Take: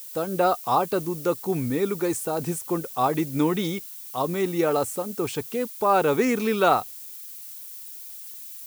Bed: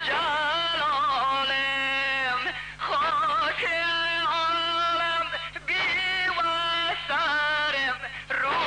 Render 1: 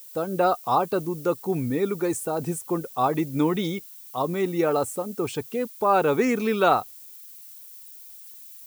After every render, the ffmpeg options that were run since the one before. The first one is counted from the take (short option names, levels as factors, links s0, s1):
-af "afftdn=nr=6:nf=-40"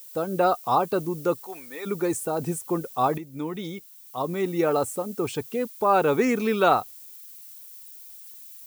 -filter_complex "[0:a]asplit=3[s0][s1][s2];[s0]afade=t=out:st=1.43:d=0.02[s3];[s1]highpass=840,afade=t=in:st=1.43:d=0.02,afade=t=out:st=1.85:d=0.02[s4];[s2]afade=t=in:st=1.85:d=0.02[s5];[s3][s4][s5]amix=inputs=3:normalize=0,asplit=2[s6][s7];[s6]atrim=end=3.18,asetpts=PTS-STARTPTS,afade=t=out:st=3.176:d=0.004:c=hsin:silence=0.211349[s8];[s7]atrim=start=3.18,asetpts=PTS-STARTPTS,afade=t=in:d=1.5:silence=0.211349[s9];[s8][s9]concat=n=2:v=0:a=1"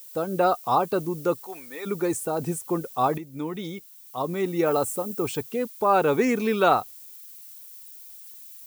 -filter_complex "[0:a]asettb=1/sr,asplit=3[s0][s1][s2];[s0]atrim=end=4.664[s3];[s1]atrim=start=4.66:end=5.42,asetpts=PTS-STARTPTS,afade=t=in:d=0.004:c=qsin,afade=t=out:st=0.756:d=0.004:c=qsin,highshelf=f=11000:g=7.5[s4];[s2]atrim=start=5.416[s5];[s3][s4]acrossfade=d=0.004:c1=hsin:c2=qsin[s6];[s6][s5]acrossfade=d=0.004:c1=qsin:c2=hsin,asettb=1/sr,asplit=3[s7][s8][s9];[s7]atrim=end=6.124[s10];[s8]atrim=start=6.12:end=6.53,asetpts=PTS-STARTPTS,afade=t=in:d=0.004:c=qsin,afade=t=out:st=0.406:d=0.004:c=qsin,bandreject=f=1300:w=11[s11];[s9]atrim=start=6.526[s12];[s10][s11]acrossfade=d=0.004:c1=hsin:c2=qsin[s13];[s13][s12]acrossfade=d=0.004:c1=qsin:c2=hsin"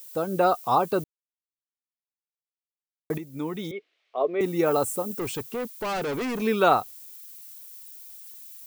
-filter_complex "[0:a]asettb=1/sr,asplit=3[s0][s1][s2];[s0]atrim=end=3.714[s3];[s1]atrim=start=3.71:end=4.41,asetpts=PTS-STARTPTS,afade=t=in:d=0.004:c=qsin,afade=t=out:st=0.696:d=0.004:c=qsin,highpass=f=280:w=0.5412,highpass=f=280:w=1.3066,equalizer=f=300:t=q:w=4:g=-6,equalizer=f=420:t=q:w=4:g=9,equalizer=f=640:t=q:w=4:g=9,equalizer=f=910:t=q:w=4:g=-8,equalizer=f=1500:t=q:w=4:g=-3,equalizer=f=2200:t=q:w=4:g=4,lowpass=f=3100:w=0.5412,lowpass=f=3100:w=1.3066[s4];[s2]atrim=start=4.406[s5];[s3][s4]acrossfade=d=0.004:c1=hsin:c2=qsin[s6];[s6][s5]acrossfade=d=0.004:c1=qsin:c2=hsin,asettb=1/sr,asplit=3[s7][s8][s9];[s7]atrim=end=5.114[s10];[s8]atrim=start=5.11:end=6.42,asetpts=PTS-STARTPTS,afade=t=in:d=0.004:c=qsin,afade=t=out:st=1.306:d=0.004:c=qsin,volume=22.4,asoftclip=hard,volume=0.0447[s11];[s9]atrim=start=6.416[s12];[s10][s11]acrossfade=d=0.004:c1=hsin:c2=qsin[s13];[s13][s12]acrossfade=d=0.004:c1=qsin:c2=hsin,asplit=3[s14][s15][s16];[s14]atrim=end=1.04,asetpts=PTS-STARTPTS,afade=t=out:st=1.036:d=0.004:c=hsin[s17];[s15]atrim=start=1.04:end=3.1,asetpts=PTS-STARTPTS,volume=0[s18];[s16]atrim=start=3.1,asetpts=PTS-STARTPTS,afade=t=in:d=0.004:c=hsin[s19];[s17][s18][s19]concat=n=3:v=0:a=1"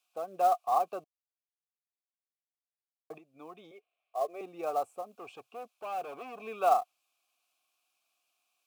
-filter_complex "[0:a]asplit=3[s0][s1][s2];[s0]bandpass=f=730:t=q:w=8,volume=1[s3];[s1]bandpass=f=1090:t=q:w=8,volume=0.501[s4];[s2]bandpass=f=2440:t=q:w=8,volume=0.355[s5];[s3][s4][s5]amix=inputs=3:normalize=0,acrossover=split=360|1100|6100[s6][s7][s8][s9];[s7]acrusher=bits=5:mode=log:mix=0:aa=0.000001[s10];[s6][s10][s8][s9]amix=inputs=4:normalize=0"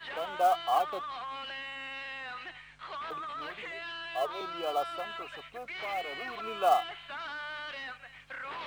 -filter_complex "[1:a]volume=0.178[s0];[0:a][s0]amix=inputs=2:normalize=0"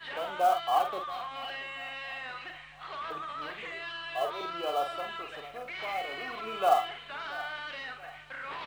-filter_complex "[0:a]asplit=2[s0][s1];[s1]adelay=46,volume=0.473[s2];[s0][s2]amix=inputs=2:normalize=0,aecho=1:1:681|1362|2043|2724:0.119|0.057|0.0274|0.0131"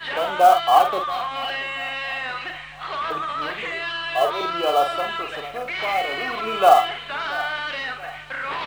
-af "volume=3.76,alimiter=limit=0.794:level=0:latency=1"